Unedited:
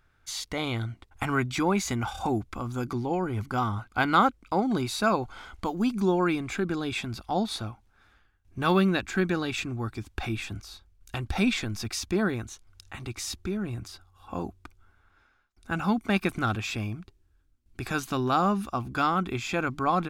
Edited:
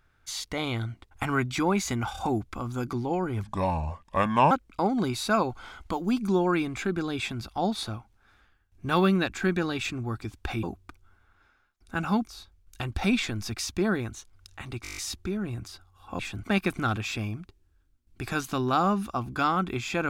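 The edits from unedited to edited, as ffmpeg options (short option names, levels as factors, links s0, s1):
-filter_complex "[0:a]asplit=14[s0][s1][s2][s3][s4][s5][s6][s7][s8][s9][s10][s11][s12][s13];[s0]atrim=end=3.434[s14];[s1]atrim=start=3.43:end=4.24,asetpts=PTS-STARTPTS,asetrate=33075,aresample=44100[s15];[s2]atrim=start=4.236:end=10.362[s16];[s3]atrim=start=14.388:end=16.032[s17];[s4]atrim=start=10.608:end=13.192[s18];[s5]atrim=start=13.168:end=13.192[s19];[s6]atrim=start=13.168:end=13.192[s20];[s7]atrim=start=13.168:end=13.192[s21];[s8]atrim=start=13.168:end=13.192[s22];[s9]atrim=start=13.168:end=13.192[s23];[s10]atrim=start=13.168:end=13.192[s24];[s11]atrim=start=13.168:end=14.392[s25];[s12]atrim=start=10.358:end=10.612[s26];[s13]atrim=start=16.028[s27];[s14][s15]acrossfade=d=0.004:c1=hsin:c2=hsin[s28];[s28][s16]acrossfade=d=0.004:c1=hsin:c2=hsin[s29];[s29][s17]acrossfade=d=0.004:c1=hsin:c2=hsin[s30];[s30][s18]acrossfade=d=0.004:c1=hsin:c2=hsin[s31];[s31][s19]acrossfade=d=0.004:c1=hsin:c2=hsin[s32];[s32][s20]acrossfade=d=0.004:c1=hsin:c2=hsin[s33];[s33][s21]acrossfade=d=0.004:c1=hsin:c2=hsin[s34];[s34][s22]acrossfade=d=0.004:c1=hsin:c2=hsin[s35];[s35][s23]acrossfade=d=0.004:c1=hsin:c2=hsin[s36];[s36][s24]acrossfade=d=0.004:c1=hsin:c2=hsin[s37];[s37][s25]acrossfade=d=0.004:c1=hsin:c2=hsin[s38];[s38][s26]acrossfade=d=0.004:c1=hsin:c2=hsin[s39];[s39][s27]acrossfade=d=0.004:c1=hsin:c2=hsin"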